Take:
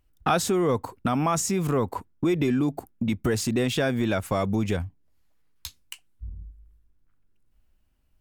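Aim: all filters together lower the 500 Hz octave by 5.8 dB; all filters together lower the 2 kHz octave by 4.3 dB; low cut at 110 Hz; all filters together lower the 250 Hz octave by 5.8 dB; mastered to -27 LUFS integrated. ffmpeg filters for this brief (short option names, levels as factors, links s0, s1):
-af "highpass=110,equalizer=f=250:t=o:g=-5.5,equalizer=f=500:t=o:g=-5.5,equalizer=f=2000:t=o:g=-5.5,volume=1.41"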